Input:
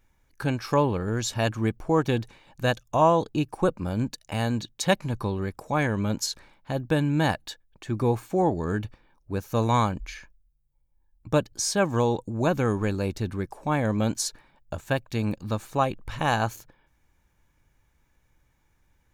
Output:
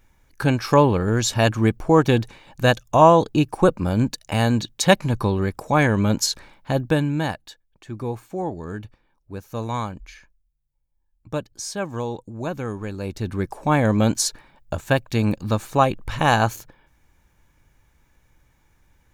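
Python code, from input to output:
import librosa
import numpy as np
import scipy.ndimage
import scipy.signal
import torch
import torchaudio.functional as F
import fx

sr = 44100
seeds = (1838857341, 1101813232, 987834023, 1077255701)

y = fx.gain(x, sr, db=fx.line((6.76, 7.0), (7.44, -4.5), (12.9, -4.5), (13.47, 6.5)))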